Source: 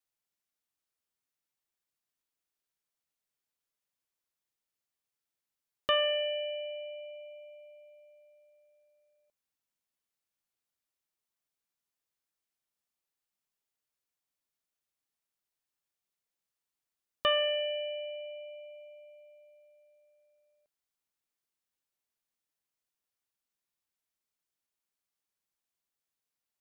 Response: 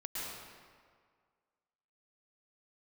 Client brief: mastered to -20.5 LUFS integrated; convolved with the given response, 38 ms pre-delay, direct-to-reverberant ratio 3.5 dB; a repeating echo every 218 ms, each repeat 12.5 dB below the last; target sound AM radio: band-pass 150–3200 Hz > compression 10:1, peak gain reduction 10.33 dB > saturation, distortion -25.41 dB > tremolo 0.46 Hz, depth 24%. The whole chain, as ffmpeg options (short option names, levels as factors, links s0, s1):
-filter_complex "[0:a]aecho=1:1:218|436|654:0.237|0.0569|0.0137,asplit=2[s0][s1];[1:a]atrim=start_sample=2205,adelay=38[s2];[s1][s2]afir=irnorm=-1:irlink=0,volume=0.531[s3];[s0][s3]amix=inputs=2:normalize=0,highpass=150,lowpass=3200,acompressor=threshold=0.0224:ratio=10,asoftclip=threshold=0.0668,tremolo=f=0.46:d=0.24,volume=9.44"